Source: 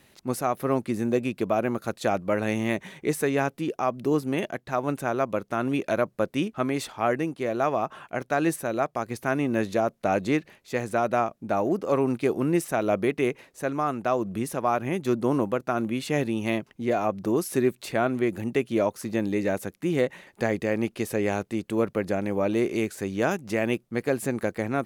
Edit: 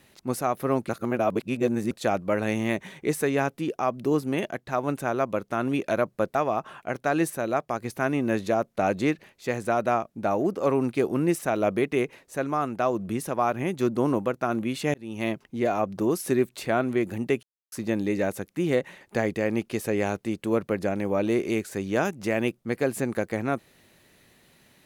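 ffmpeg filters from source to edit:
-filter_complex "[0:a]asplit=7[a][b][c][d][e][f][g];[a]atrim=end=0.892[h];[b]atrim=start=0.888:end=1.912,asetpts=PTS-STARTPTS,areverse[i];[c]atrim=start=1.908:end=6.352[j];[d]atrim=start=7.608:end=16.2,asetpts=PTS-STARTPTS,afade=t=out:st=8.588:d=0.004:c=hsin[k];[e]atrim=start=16.2:end=18.69,asetpts=PTS-STARTPTS,afade=t=in:d=0.38,afade=t=out:st=2.486:d=0.004:c=hsin[l];[f]atrim=start=18.69:end=18.98,asetpts=PTS-STARTPTS,volume=0[m];[g]atrim=start=18.98,asetpts=PTS-STARTPTS,afade=t=in:d=0.004:c=hsin[n];[h][i]acrossfade=d=0.004:c1=hsin:c2=hsin[o];[o][j]acrossfade=d=0.004:c1=hsin:c2=hsin[p];[k][l][m][n]concat=n=4:v=0:a=1[q];[p][q]acrossfade=d=0.004:c1=hsin:c2=hsin"

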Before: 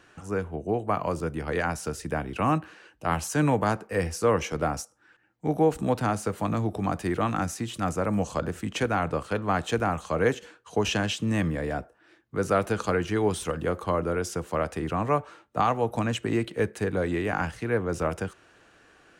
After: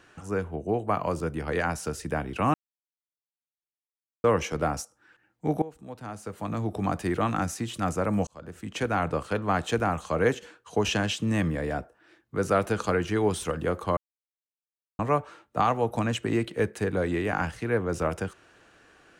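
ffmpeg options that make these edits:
-filter_complex "[0:a]asplit=7[a][b][c][d][e][f][g];[a]atrim=end=2.54,asetpts=PTS-STARTPTS,afade=t=out:st=2.536:d=0.004:c=hsin[h];[b]atrim=start=2.54:end=4.24,asetpts=PTS-STARTPTS,volume=0[i];[c]atrim=start=4.24:end=5.62,asetpts=PTS-STARTPTS,afade=t=in:d=0.004:c=hsin,afade=t=out:st=1.376:d=0.004:c=hsin:silence=0.105925[j];[d]atrim=start=5.62:end=8.27,asetpts=PTS-STARTPTS,afade=t=in:d=1.18:c=qua:silence=0.105925,afade=t=out:st=2.646:d=0.004:c=hsin[k];[e]atrim=start=8.27:end=13.97,asetpts=PTS-STARTPTS,afade=t=in:d=0.72,afade=t=out:st=5.696:d=0.004:c=hsin[l];[f]atrim=start=13.97:end=14.99,asetpts=PTS-STARTPTS,volume=0[m];[g]atrim=start=14.99,asetpts=PTS-STARTPTS,afade=t=in:d=0.004:c=hsin[n];[h][i][j][k][l][m][n]concat=n=7:v=0:a=1"

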